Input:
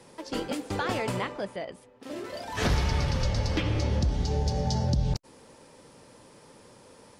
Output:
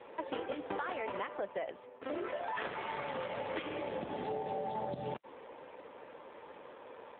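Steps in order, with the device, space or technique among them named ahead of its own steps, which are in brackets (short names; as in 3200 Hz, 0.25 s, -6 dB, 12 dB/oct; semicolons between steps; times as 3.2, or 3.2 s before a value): voicemail (BPF 430–2700 Hz; compressor 10:1, threshold -40 dBFS, peak gain reduction 14 dB; gain +7 dB; AMR-NB 7.4 kbps 8000 Hz)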